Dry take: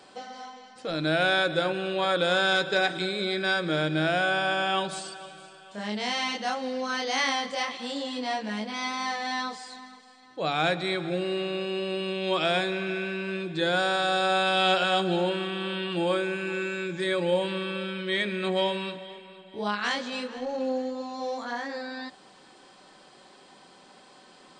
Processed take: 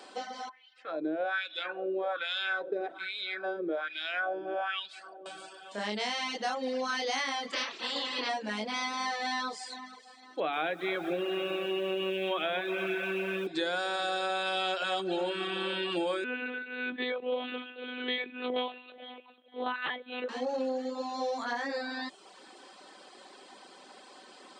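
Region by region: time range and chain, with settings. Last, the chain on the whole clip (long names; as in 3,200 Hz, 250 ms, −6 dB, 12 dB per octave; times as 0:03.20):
0:00.49–0:05.26: bass and treble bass +2 dB, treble −6 dB + notch filter 930 Hz, Q 21 + LFO wah 1.2 Hz 350–3,300 Hz, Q 2.2
0:07.51–0:08.28: ceiling on every frequency bin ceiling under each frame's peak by 20 dB + low-pass filter 4,200 Hz + notch filter 750 Hz, Q 11
0:10.40–0:13.47: Butterworth low-pass 3,500 Hz 72 dB per octave + feedback echo at a low word length 126 ms, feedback 80%, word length 8 bits, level −14 dB
0:16.24–0:20.29: shaped tremolo triangle 1.8 Hz, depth 65% + one-pitch LPC vocoder at 8 kHz 250 Hz
whole clip: high-pass filter 240 Hz 24 dB per octave; reverb reduction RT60 0.58 s; downward compressor, threshold −31 dBFS; level +2.5 dB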